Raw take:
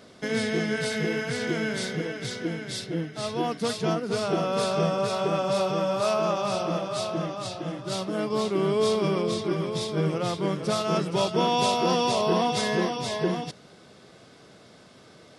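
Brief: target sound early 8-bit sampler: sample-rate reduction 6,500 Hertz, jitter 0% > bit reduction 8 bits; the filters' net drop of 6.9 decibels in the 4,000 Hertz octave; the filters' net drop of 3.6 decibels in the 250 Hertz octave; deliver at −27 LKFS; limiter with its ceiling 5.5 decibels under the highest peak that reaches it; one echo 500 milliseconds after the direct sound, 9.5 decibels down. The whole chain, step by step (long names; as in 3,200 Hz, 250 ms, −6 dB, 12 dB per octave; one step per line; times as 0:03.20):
parametric band 250 Hz −5.5 dB
parametric band 4,000 Hz −9 dB
brickwall limiter −18.5 dBFS
single-tap delay 500 ms −9.5 dB
sample-rate reduction 6,500 Hz, jitter 0%
bit reduction 8 bits
level +2 dB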